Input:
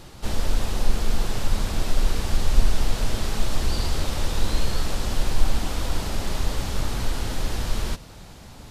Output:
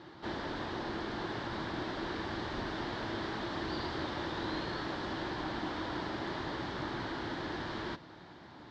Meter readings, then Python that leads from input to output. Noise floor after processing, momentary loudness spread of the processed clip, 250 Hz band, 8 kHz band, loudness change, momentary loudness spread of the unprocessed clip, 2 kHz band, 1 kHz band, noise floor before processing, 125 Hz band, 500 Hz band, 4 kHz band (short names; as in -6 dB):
-53 dBFS, 3 LU, -4.0 dB, -25.0 dB, -9.5 dB, 4 LU, -3.5 dB, -3.5 dB, -43 dBFS, -15.5 dB, -5.0 dB, -9.5 dB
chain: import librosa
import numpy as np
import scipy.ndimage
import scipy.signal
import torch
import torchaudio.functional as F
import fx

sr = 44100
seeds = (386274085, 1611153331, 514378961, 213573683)

y = fx.cabinet(x, sr, low_hz=160.0, low_slope=12, high_hz=4000.0, hz=(210.0, 330.0, 490.0, 970.0, 1700.0, 2600.0), db=(-4, 9, -4, 4, 6, -8))
y = F.gain(torch.from_numpy(y), -5.5).numpy()